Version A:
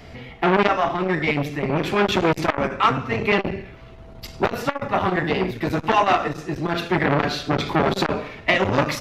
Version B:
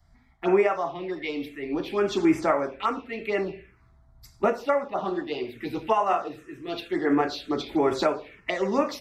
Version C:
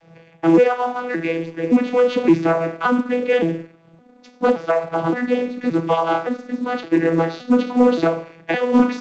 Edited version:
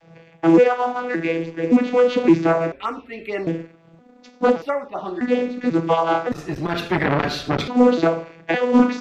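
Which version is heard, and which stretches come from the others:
C
2.72–3.47 from B
4.62–5.21 from B
6.32–7.68 from A

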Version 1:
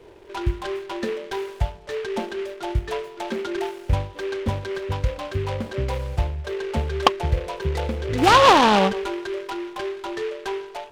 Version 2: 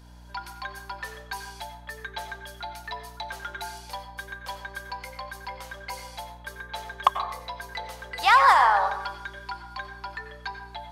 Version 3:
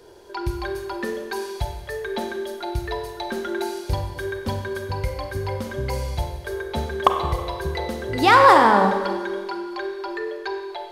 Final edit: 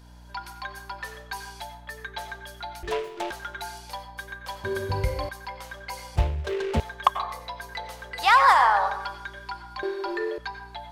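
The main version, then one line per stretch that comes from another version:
2
2.83–3.31 from 1
4.64–5.29 from 3
6.16–6.8 from 1
9.83–10.38 from 3

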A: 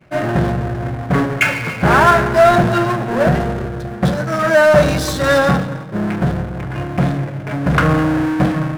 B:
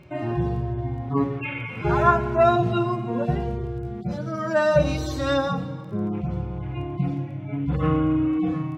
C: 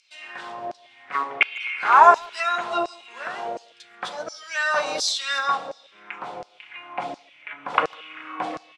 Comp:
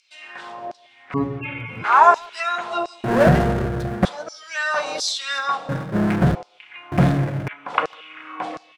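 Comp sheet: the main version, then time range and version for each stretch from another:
C
1.14–1.84 from B
3.04–4.05 from A
5.69–6.35 from A
6.92–7.48 from A

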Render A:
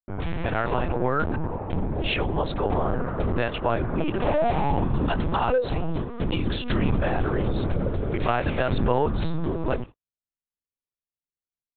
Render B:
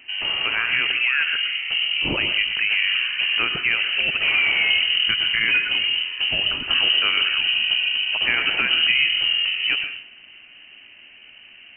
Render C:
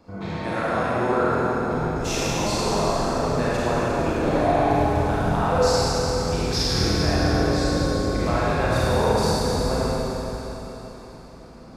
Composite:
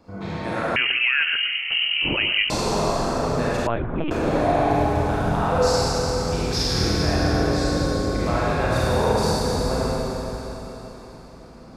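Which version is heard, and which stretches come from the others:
C
0.76–2.5 from B
3.67–4.11 from A

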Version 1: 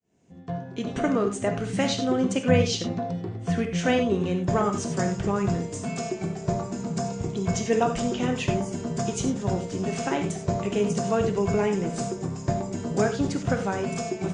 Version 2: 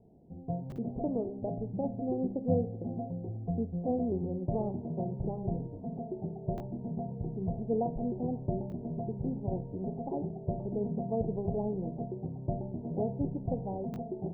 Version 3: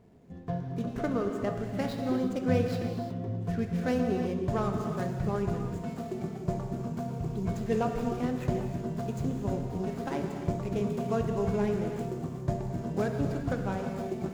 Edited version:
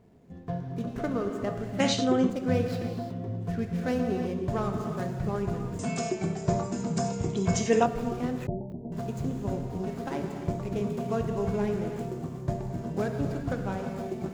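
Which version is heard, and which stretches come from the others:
3
1.8–2.3 from 1
5.79–7.86 from 1
8.47–8.92 from 2

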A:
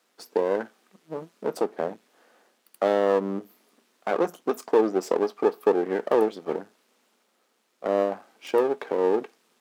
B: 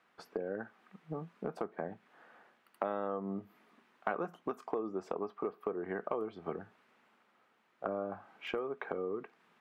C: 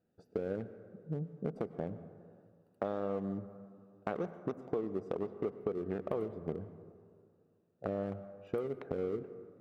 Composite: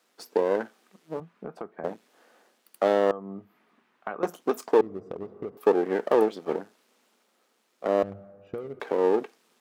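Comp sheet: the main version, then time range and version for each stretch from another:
A
1.2–1.84 from B
3.11–4.23 from B
4.81–5.57 from C
8.03–8.8 from C

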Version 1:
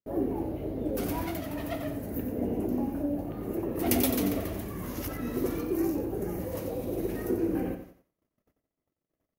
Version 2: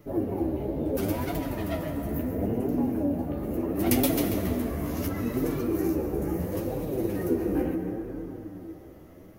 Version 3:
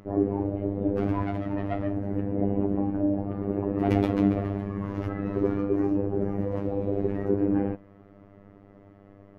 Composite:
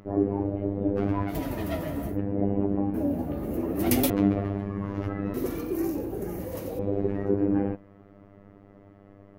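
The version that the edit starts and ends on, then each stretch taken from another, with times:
3
1.32–2.12 from 2, crossfade 0.10 s
2.94–4.1 from 2
5.34–6.79 from 1

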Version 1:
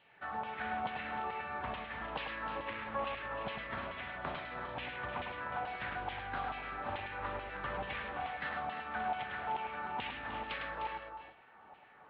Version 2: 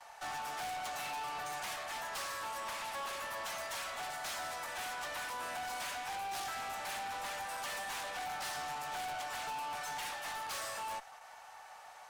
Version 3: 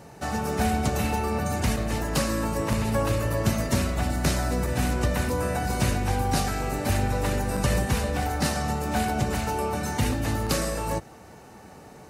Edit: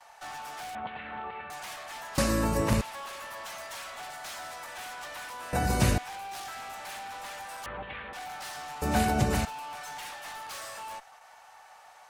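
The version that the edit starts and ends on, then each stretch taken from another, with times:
2
0.75–1.5 from 1
2.18–2.81 from 3
5.53–5.98 from 3
7.66–8.13 from 1
8.82–9.45 from 3

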